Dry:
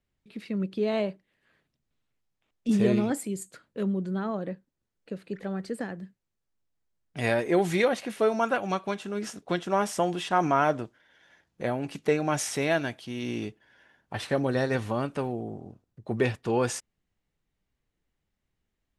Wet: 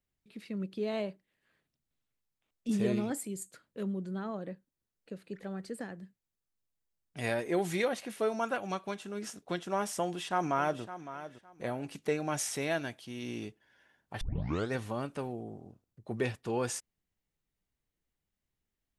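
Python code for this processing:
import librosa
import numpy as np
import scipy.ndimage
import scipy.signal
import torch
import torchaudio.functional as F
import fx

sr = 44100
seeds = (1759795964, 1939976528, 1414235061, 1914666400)

y = fx.echo_throw(x, sr, start_s=10.01, length_s=0.81, ms=560, feedback_pct=20, wet_db=-13.0)
y = fx.edit(y, sr, fx.tape_start(start_s=14.21, length_s=0.51), tone=tone)
y = fx.high_shelf(y, sr, hz=6500.0, db=7.5)
y = y * librosa.db_to_amplitude(-7.0)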